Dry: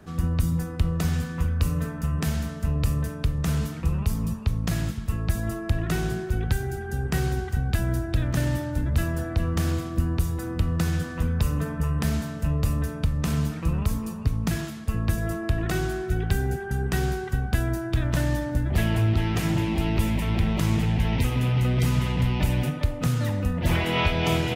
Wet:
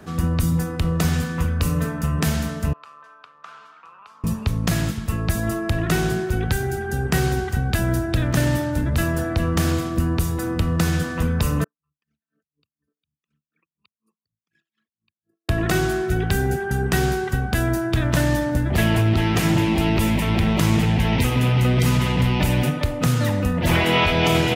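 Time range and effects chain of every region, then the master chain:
2.73–4.24 s: ladder band-pass 1.4 kHz, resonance 50% + peaking EQ 1.9 kHz -8.5 dB 0.4 oct
11.64–15.49 s: resonances exaggerated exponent 3 + resonant high-pass 2.7 kHz, resonance Q 1.7 + logarithmic tremolo 4.1 Hz, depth 32 dB
whole clip: bass shelf 92 Hz -9.5 dB; compressor with a negative ratio -24 dBFS, ratio -1; trim +7.5 dB

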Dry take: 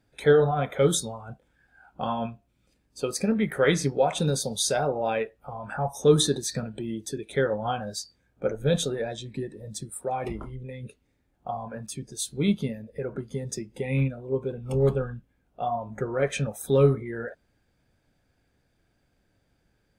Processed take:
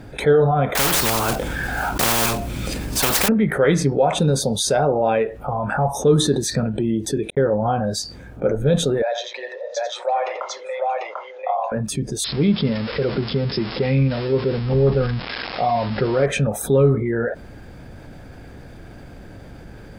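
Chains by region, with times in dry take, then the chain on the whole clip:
0.75–3.29 s: block-companded coder 5-bit + treble shelf 2.2 kHz +9 dB + spectrum-flattening compressor 10:1
7.30–7.84 s: low-pass 1.1 kHz 6 dB/octave + gate -39 dBFS, range -54 dB
9.02–11.72 s: Chebyshev band-pass 530–6500 Hz, order 5 + multi-tap echo 87/744 ms -11/-3.5 dB
12.24–16.26 s: zero-crossing glitches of -21.5 dBFS + brick-wall FIR low-pass 5.4 kHz
whole clip: treble shelf 2.1 kHz -10.5 dB; level flattener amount 50%; trim +2.5 dB

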